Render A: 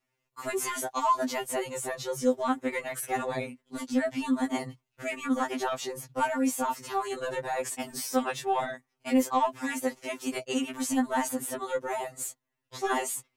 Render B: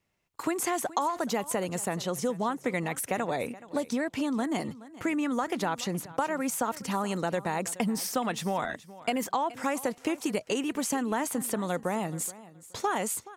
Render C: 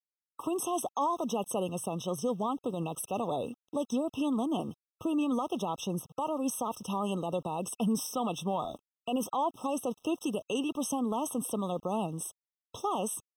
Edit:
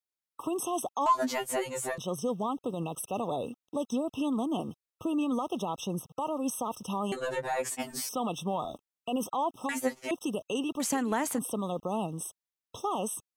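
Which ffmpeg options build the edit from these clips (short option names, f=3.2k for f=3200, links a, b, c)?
-filter_complex "[0:a]asplit=3[a][b][c];[2:a]asplit=5[d][e][f][g][h];[d]atrim=end=1.062[i];[a]atrim=start=1.058:end=1.982[j];[e]atrim=start=1.978:end=7.122[k];[b]atrim=start=7.118:end=8.092[l];[f]atrim=start=8.088:end=9.692[m];[c]atrim=start=9.688:end=10.112[n];[g]atrim=start=10.108:end=10.802[o];[1:a]atrim=start=10.798:end=11.392[p];[h]atrim=start=11.388[q];[i][j]acrossfade=d=0.004:c1=hsin:c2=hsin[r];[r][k]acrossfade=d=0.004:c1=hsin:c2=hsin[s];[s][l]acrossfade=d=0.004:c1=hsin:c2=hsin[t];[t][m]acrossfade=d=0.004:c1=hsin:c2=hsin[u];[u][n]acrossfade=d=0.004:c1=hsin:c2=hsin[v];[v][o]acrossfade=d=0.004:c1=hsin:c2=hsin[w];[w][p]acrossfade=d=0.004:c1=hsin:c2=hsin[x];[x][q]acrossfade=d=0.004:c1=hsin:c2=hsin"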